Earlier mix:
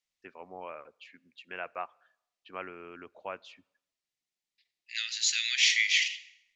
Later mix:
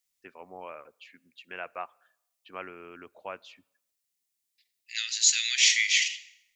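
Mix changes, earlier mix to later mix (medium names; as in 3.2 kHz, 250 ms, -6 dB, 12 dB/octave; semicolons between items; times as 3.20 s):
second voice: remove low-pass 5.3 kHz 12 dB/octave; master: add treble shelf 5 kHz +3.5 dB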